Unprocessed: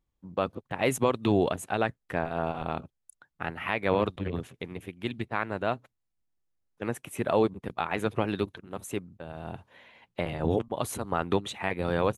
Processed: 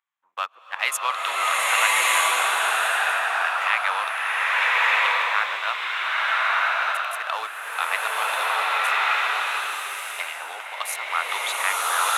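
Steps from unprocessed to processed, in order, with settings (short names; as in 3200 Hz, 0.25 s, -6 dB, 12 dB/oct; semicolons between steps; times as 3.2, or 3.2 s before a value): Wiener smoothing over 9 samples; HPF 1100 Hz 24 dB/oct; bloom reverb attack 1.24 s, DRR -8.5 dB; gain +9 dB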